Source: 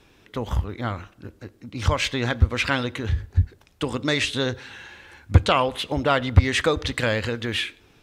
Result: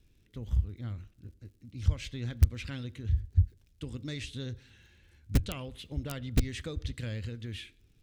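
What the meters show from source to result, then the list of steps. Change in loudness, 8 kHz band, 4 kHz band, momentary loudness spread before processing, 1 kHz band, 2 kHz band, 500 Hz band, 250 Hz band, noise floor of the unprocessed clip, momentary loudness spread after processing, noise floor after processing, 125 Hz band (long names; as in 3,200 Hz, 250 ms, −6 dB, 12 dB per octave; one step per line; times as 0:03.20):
−10.5 dB, −12.0 dB, −17.0 dB, 18 LU, −26.0 dB, −20.5 dB, −19.5 dB, −11.0 dB, −57 dBFS, 18 LU, −66 dBFS, −7.5 dB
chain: wrap-around overflow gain 6.5 dB
surface crackle 94 per second −43 dBFS
guitar amp tone stack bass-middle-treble 10-0-1
level +5 dB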